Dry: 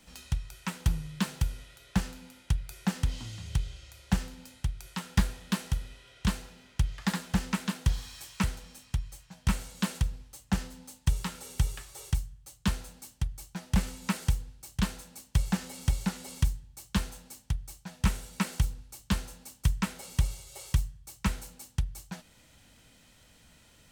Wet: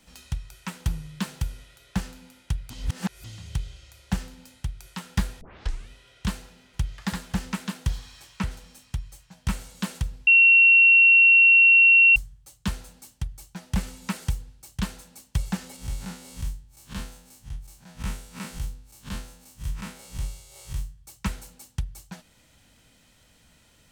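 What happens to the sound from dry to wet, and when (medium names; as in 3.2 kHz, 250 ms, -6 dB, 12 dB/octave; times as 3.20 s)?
2.70–3.24 s: reverse
5.41 s: tape start 0.49 s
6.40–7.02 s: echo throw 330 ms, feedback 15%, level -13.5 dB
7.97–8.50 s: treble shelf 9.3 kHz -> 5.6 kHz -10 dB
10.27–12.16 s: bleep 2.73 kHz -11.5 dBFS
15.76–20.98 s: spectral blur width 85 ms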